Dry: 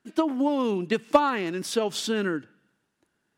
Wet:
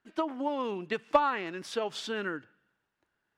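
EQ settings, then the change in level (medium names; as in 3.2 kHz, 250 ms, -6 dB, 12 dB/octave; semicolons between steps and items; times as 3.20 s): peaking EQ 220 Hz -11.5 dB 2.5 oct; treble shelf 3.6 kHz -10 dB; treble shelf 8 kHz -9.5 dB; 0.0 dB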